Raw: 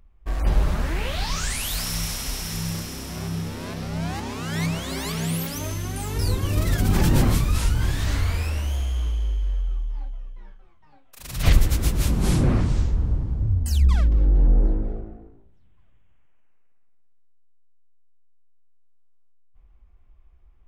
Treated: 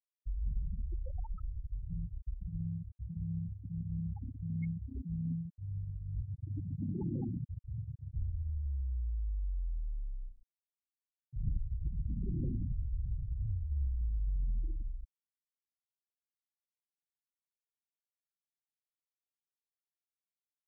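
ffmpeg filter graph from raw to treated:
-filter_complex "[0:a]asettb=1/sr,asplit=3[a][b][c];[a]atrim=end=1.544[d];[b]atrim=start=1.54:end=5.55,asetpts=PTS-STARTPTS,afade=t=in:d=0.004:c=qsin,afade=t=out:st=4.006:d=0.004:c=qsin,equalizer=f=100:w=0.74:g=2.5,aeval=exprs='val(0)+0.0158*(sin(2*PI*60*n/s)+sin(2*PI*2*60*n/s)/2+sin(2*PI*3*60*n/s)/3+sin(2*PI*4*60*n/s)/4+sin(2*PI*5*60*n/s)/5)':c=same,aecho=1:1:361:0.188,atrim=end_sample=176841[e];[c]atrim=start=5.546[f];[d][e]acrossfade=d=0.004:c1=hsin:c2=qsin[g];[g][f]acrossfade=d=0.004:c1=qsin:c2=hsin,asettb=1/sr,asplit=3[h][i][j];[h]atrim=end=6.234[k];[i]atrim=start=6.23:end=8.15,asetpts=PTS-STARTPTS,afade=t=in:d=0.004:c=qsin,afade=t=out:st=1.916:d=0.004:c=qsin,highpass=130,acrusher=bits=8:dc=4:mix=0:aa=0.000001[l];[j]atrim=start=8.146[m];[k][l]acrossfade=d=0.004:c1=hsin:c2=qsin[n];[n][m]acrossfade=d=0.004:c1=qsin:c2=hsin,afftfilt=real='re*gte(hypot(re,im),0.251)':imag='im*gte(hypot(re,im),0.251)':win_size=1024:overlap=0.75,acompressor=threshold=-28dB:ratio=3,volume=-6.5dB"

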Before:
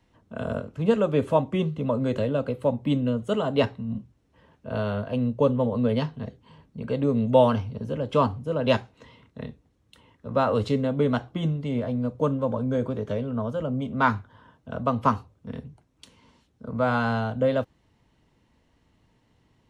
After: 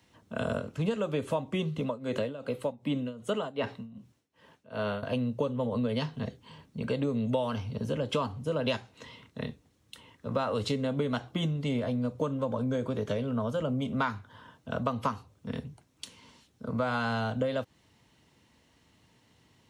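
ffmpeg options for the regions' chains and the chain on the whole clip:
-filter_complex "[0:a]asettb=1/sr,asplit=3[a][b][c];[a]atrim=end=1.804[d];[b]atrim=start=1.8:end=5.03,asetpts=PTS-STARTPTS,afade=t=in:d=0.004:c=qsin,afade=t=out:st=3.226:d=0.004:c=qsin,highpass=f=170:p=1,acrossover=split=2800[e][f];[f]acompressor=threshold=-50dB:ratio=4:attack=1:release=60[g];[e][g]amix=inputs=2:normalize=0,tremolo=f=2.6:d=0.87[h];[c]atrim=start=5.026[i];[d][h]acrossfade=d=0.004:c1=hsin:c2=qsin[j];[j][i]acrossfade=d=0.004:c1=qsin:c2=hsin,highpass=74,highshelf=f=2.2k:g=9.5,acompressor=threshold=-26dB:ratio=10"

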